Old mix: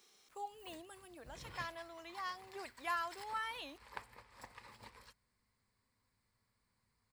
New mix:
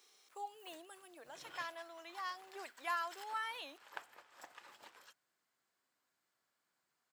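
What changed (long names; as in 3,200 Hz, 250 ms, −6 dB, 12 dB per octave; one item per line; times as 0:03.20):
background: remove EQ curve with evenly spaced ripples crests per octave 0.92, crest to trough 8 dB
master: add high-pass filter 370 Hz 12 dB per octave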